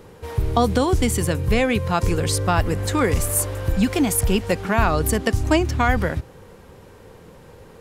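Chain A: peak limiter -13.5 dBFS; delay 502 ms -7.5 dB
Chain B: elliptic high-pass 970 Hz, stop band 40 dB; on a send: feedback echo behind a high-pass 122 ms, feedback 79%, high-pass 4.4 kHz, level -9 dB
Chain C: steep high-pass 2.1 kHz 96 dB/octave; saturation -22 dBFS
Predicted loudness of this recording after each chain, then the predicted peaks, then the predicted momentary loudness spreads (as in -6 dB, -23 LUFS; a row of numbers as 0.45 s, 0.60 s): -23.5 LUFS, -26.5 LUFS, -31.0 LUFS; -10.5 dBFS, -9.5 dBFS, -22.0 dBFS; 7 LU, 7 LU, 9 LU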